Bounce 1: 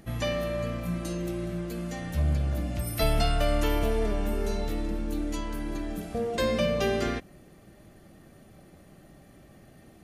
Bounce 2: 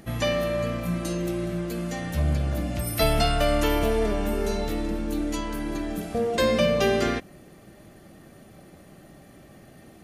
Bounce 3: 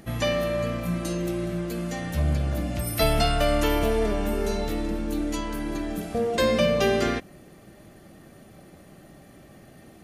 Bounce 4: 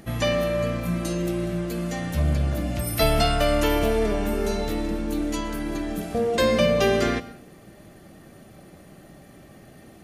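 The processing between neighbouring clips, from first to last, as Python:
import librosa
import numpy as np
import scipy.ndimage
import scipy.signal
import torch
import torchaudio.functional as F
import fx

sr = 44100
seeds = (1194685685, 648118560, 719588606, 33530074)

y1 = fx.low_shelf(x, sr, hz=91.0, db=-6.5)
y1 = y1 * librosa.db_to_amplitude(5.0)
y2 = y1
y3 = fx.rev_plate(y2, sr, seeds[0], rt60_s=0.53, hf_ratio=0.8, predelay_ms=105, drr_db=16.5)
y3 = y3 * librosa.db_to_amplitude(1.5)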